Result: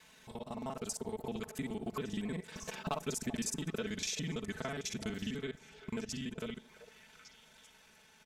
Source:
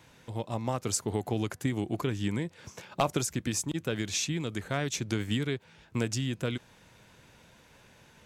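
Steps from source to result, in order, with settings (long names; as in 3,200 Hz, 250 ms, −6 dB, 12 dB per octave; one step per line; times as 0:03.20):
reversed piece by piece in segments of 40 ms
source passing by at 0:03.46, 11 m/s, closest 4.6 metres
comb filter 4.6 ms, depth 75%
downward compressor 6 to 1, threshold −43 dBFS, peak gain reduction 17 dB
echo through a band-pass that steps 386 ms, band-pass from 640 Hz, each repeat 1.4 octaves, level −12 dB
on a send at −23 dB: convolution reverb RT60 0.80 s, pre-delay 44 ms
on the sum: one half of a high-frequency compander encoder only
level +8 dB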